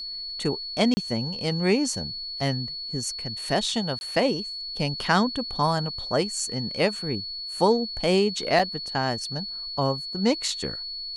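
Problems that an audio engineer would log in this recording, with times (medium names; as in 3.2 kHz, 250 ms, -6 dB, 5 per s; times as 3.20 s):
whine 4.4 kHz -32 dBFS
0.94–0.97 s: dropout 30 ms
3.99–4.01 s: dropout 21 ms
8.59 s: dropout 4.3 ms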